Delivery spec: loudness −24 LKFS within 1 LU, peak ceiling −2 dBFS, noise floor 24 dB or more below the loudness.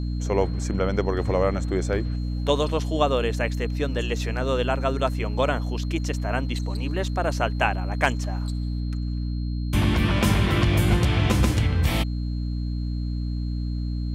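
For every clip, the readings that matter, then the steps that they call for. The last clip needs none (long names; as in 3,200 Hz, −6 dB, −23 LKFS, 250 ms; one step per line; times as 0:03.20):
mains hum 60 Hz; hum harmonics up to 300 Hz; level of the hum −25 dBFS; interfering tone 4,200 Hz; level of the tone −49 dBFS; integrated loudness −25.0 LKFS; sample peak −5.0 dBFS; target loudness −24.0 LKFS
→ hum removal 60 Hz, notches 5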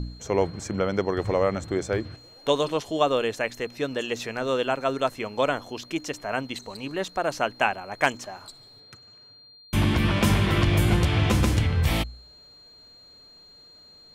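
mains hum none found; interfering tone 4,200 Hz; level of the tone −49 dBFS
→ notch filter 4,200 Hz, Q 30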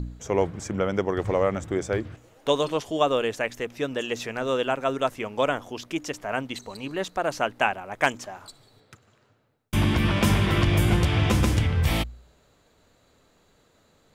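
interfering tone none found; integrated loudness −25.5 LKFS; sample peak −6.0 dBFS; target loudness −24.0 LKFS
→ level +1.5 dB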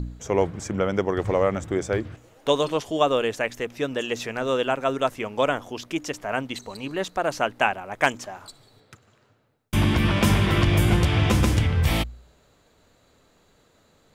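integrated loudness −24.0 LKFS; sample peak −4.5 dBFS; background noise floor −61 dBFS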